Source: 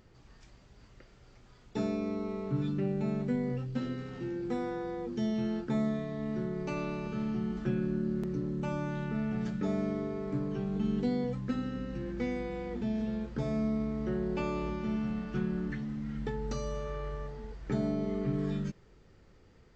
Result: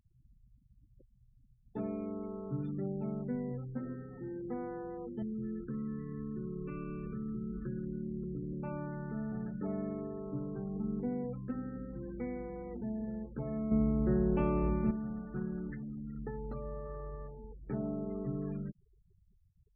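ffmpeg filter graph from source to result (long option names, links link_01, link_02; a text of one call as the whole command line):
ffmpeg -i in.wav -filter_complex "[0:a]asettb=1/sr,asplit=3[link_01][link_02][link_03];[link_01]atrim=end=5.224[link_04];[link_02]atrim=start=5.22:end=8.53,asetpts=PTS-STARTPTS,afade=type=in:duration=0.004:curve=qsin,afade=type=out:start_time=3.306:duration=0.004:curve=qsin,lowshelf=frequency=130:gain=7.5,acompressor=threshold=-30dB:ratio=3:attack=3.2:release=140:knee=1:detection=peak,asuperstop=centerf=730:order=8:qfactor=1.6[link_05];[link_03]atrim=start=8.526[link_06];[link_04][link_05]acrossfade=duration=0.004:curve1=hsin:curve2=qsin[link_07];[link_07][link_06]acrossfade=duration=0.004:curve1=qsin:curve2=hsin,asettb=1/sr,asplit=3[link_08][link_09][link_10];[link_08]atrim=end=13.714[link_11];[link_09]atrim=start=13.71:end=14.91,asetpts=PTS-STARTPTS,afade=type=in:duration=0.004:curve=qsin,afade=type=out:start_time=1.196:duration=0.004:curve=qsin,lowshelf=frequency=220:gain=7.5,acontrast=31[link_12];[link_10]atrim=start=14.906[link_13];[link_11][link_12]acrossfade=duration=0.004:curve1=hsin:curve2=qsin[link_14];[link_14][link_13]acrossfade=duration=0.004:curve1=qsin:curve2=hsin,lowpass=1400,aemphasis=mode=production:type=75fm,afftfilt=real='re*gte(hypot(re,im),0.00562)':imag='im*gte(hypot(re,im),0.00562)':win_size=1024:overlap=0.75,volume=-4.5dB" out.wav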